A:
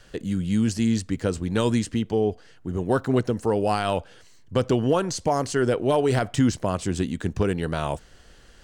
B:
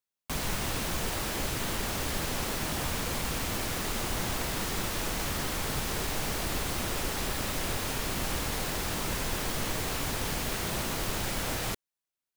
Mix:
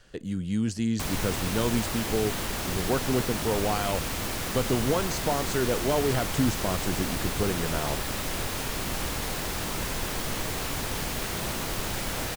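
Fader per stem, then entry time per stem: -5.0 dB, +1.0 dB; 0.00 s, 0.70 s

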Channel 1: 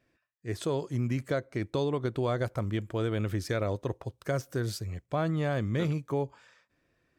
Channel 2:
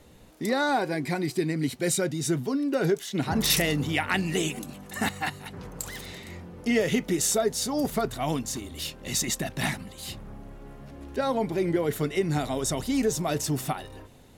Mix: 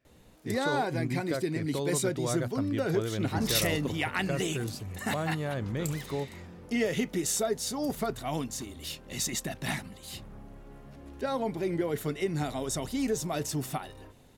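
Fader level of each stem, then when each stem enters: -3.5 dB, -4.5 dB; 0.00 s, 0.05 s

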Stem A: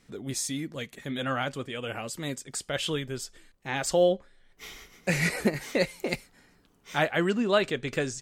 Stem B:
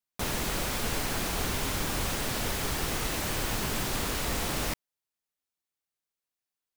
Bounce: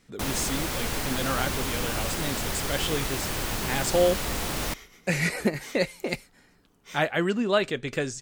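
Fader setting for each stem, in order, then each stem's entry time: +0.5 dB, +1.0 dB; 0.00 s, 0.00 s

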